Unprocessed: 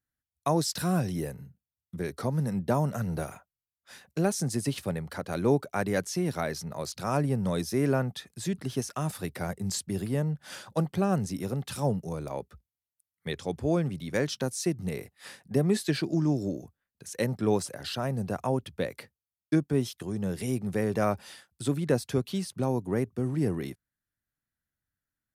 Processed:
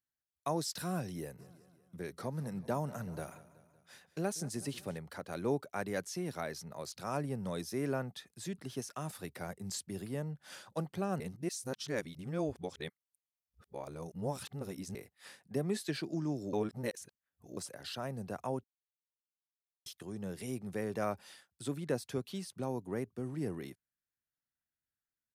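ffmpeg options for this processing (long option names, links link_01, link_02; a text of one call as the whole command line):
ffmpeg -i in.wav -filter_complex "[0:a]asplit=3[link_01][link_02][link_03];[link_01]afade=type=out:start_time=1.38:duration=0.02[link_04];[link_02]aecho=1:1:188|376|564|752|940:0.126|0.068|0.0367|0.0198|0.0107,afade=type=in:start_time=1.38:duration=0.02,afade=type=out:start_time=4.97:duration=0.02[link_05];[link_03]afade=type=in:start_time=4.97:duration=0.02[link_06];[link_04][link_05][link_06]amix=inputs=3:normalize=0,asplit=7[link_07][link_08][link_09][link_10][link_11][link_12][link_13];[link_07]atrim=end=11.202[link_14];[link_08]atrim=start=11.198:end=14.952,asetpts=PTS-STARTPTS,areverse[link_15];[link_09]atrim=start=14.948:end=16.532[link_16];[link_10]atrim=start=16.528:end=17.572,asetpts=PTS-STARTPTS,areverse[link_17];[link_11]atrim=start=17.568:end=18.64,asetpts=PTS-STARTPTS,afade=type=out:start_time=1.068:duration=0.004:curve=hsin[link_18];[link_12]atrim=start=18.64:end=19.86,asetpts=PTS-STARTPTS,volume=0[link_19];[link_13]atrim=start=19.86,asetpts=PTS-STARTPTS,afade=type=in:duration=0.004:curve=hsin[link_20];[link_14][link_15]acrossfade=duration=0.004:curve1=hsin:curve2=hsin[link_21];[link_21][link_16]acrossfade=duration=0.004:curve1=hsin:curve2=hsin[link_22];[link_22][link_17]acrossfade=duration=0.004:curve1=hsin:curve2=hsin[link_23];[link_18][link_19][link_20]concat=n=3:v=0:a=1[link_24];[link_23][link_24]acrossfade=duration=0.004:curve1=hsin:curve2=hsin,lowshelf=frequency=170:gain=-6.5,volume=-7.5dB" out.wav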